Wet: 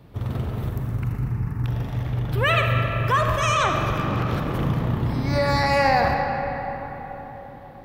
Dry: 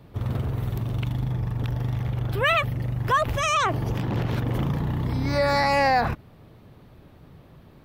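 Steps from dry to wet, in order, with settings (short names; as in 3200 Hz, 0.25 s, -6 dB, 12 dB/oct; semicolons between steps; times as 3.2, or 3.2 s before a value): 0.69–1.66 fixed phaser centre 1400 Hz, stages 4; reverb RT60 4.4 s, pre-delay 15 ms, DRR 2 dB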